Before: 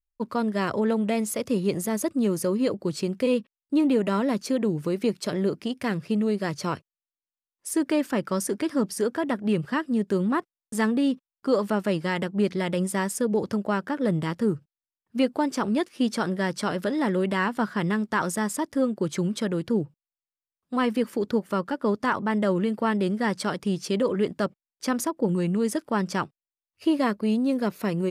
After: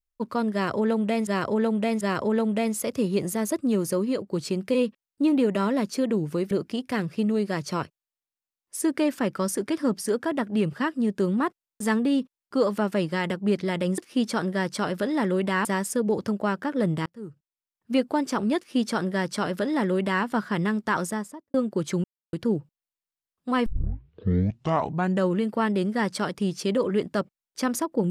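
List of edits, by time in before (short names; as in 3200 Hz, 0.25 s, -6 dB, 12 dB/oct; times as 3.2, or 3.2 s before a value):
0.53–1.27 loop, 3 plays
2.49–2.83 fade out, to -6.5 dB
5.03–5.43 cut
14.31–15.18 fade in
15.82–17.49 copy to 12.9
18.22–18.79 studio fade out
19.29–19.58 mute
20.91 tape start 1.64 s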